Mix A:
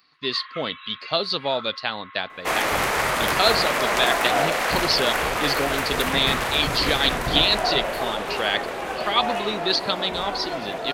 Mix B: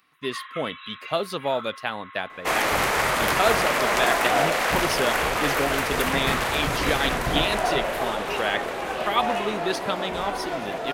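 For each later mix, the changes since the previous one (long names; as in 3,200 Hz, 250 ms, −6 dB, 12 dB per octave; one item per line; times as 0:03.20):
speech: remove low-pass with resonance 4,400 Hz, resonance Q 8.7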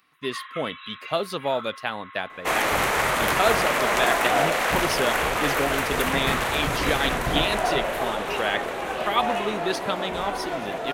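second sound: add parametric band 4,900 Hz −4 dB 0.35 octaves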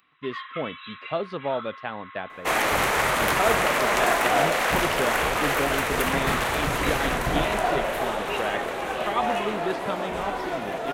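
speech: add head-to-tape spacing loss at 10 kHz 32 dB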